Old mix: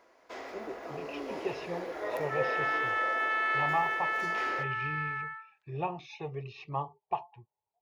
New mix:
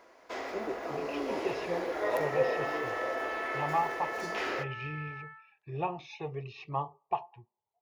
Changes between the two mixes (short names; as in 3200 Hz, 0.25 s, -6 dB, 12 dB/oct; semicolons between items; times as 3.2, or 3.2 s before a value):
speech: send on; first sound +4.5 dB; second sound -8.5 dB